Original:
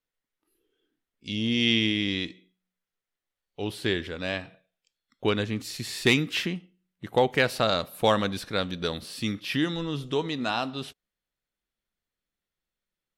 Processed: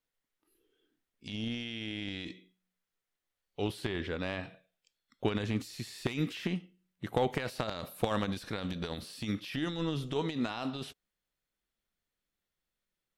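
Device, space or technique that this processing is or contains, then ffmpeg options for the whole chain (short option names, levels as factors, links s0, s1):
de-esser from a sidechain: -filter_complex "[0:a]asettb=1/sr,asplit=3[s0][s1][s2];[s0]atrim=end=3.884[s3];[s1]atrim=start=3.88:end=4.43,asetpts=PTS-STARTPTS,afade=t=in:d=0.004:c=qsin,afade=t=out:st=0.546:d=0.004:c=qsin,aemphasis=mode=reproduction:type=50fm[s4];[s2]atrim=start=4.426[s5];[s3][s4]acrossfade=d=0.004:c1=hsin:c2=qsin[s6];[s6][s5]acrossfade=d=0.004:c1=qsin:c2=hsin,asplit=2[s7][s8];[s8]highpass=4600,apad=whole_len=581115[s9];[s7][s9]sidechaincompress=threshold=0.00398:ratio=12:attack=3.3:release=26"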